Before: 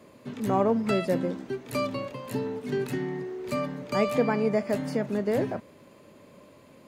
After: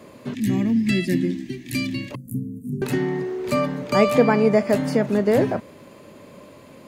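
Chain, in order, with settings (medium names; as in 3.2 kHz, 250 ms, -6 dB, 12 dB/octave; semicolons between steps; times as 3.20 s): 0.34–2.11 s: time-frequency box 380–1600 Hz -22 dB; 2.15–2.82 s: inverse Chebyshev band-stop 830–3300 Hz, stop band 70 dB; trim +8 dB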